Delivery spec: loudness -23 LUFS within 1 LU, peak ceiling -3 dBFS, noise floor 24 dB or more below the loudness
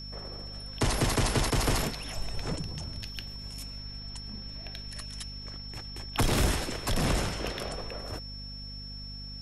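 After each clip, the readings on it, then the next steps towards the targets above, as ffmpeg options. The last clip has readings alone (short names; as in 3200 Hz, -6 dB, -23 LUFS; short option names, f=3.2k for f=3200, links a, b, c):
hum 50 Hz; harmonics up to 250 Hz; hum level -41 dBFS; steady tone 5400 Hz; tone level -42 dBFS; loudness -33.0 LUFS; peak -14.5 dBFS; loudness target -23.0 LUFS
-> -af "bandreject=f=50:t=h:w=4,bandreject=f=100:t=h:w=4,bandreject=f=150:t=h:w=4,bandreject=f=200:t=h:w=4,bandreject=f=250:t=h:w=4"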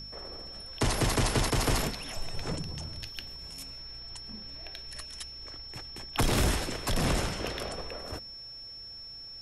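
hum none; steady tone 5400 Hz; tone level -42 dBFS
-> -af "bandreject=f=5.4k:w=30"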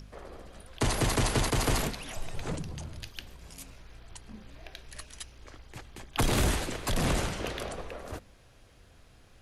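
steady tone none; loudness -31.0 LUFS; peak -15.5 dBFS; loudness target -23.0 LUFS
-> -af "volume=8dB"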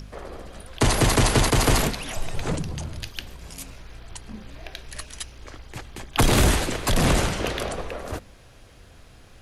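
loudness -23.0 LUFS; peak -7.5 dBFS; noise floor -50 dBFS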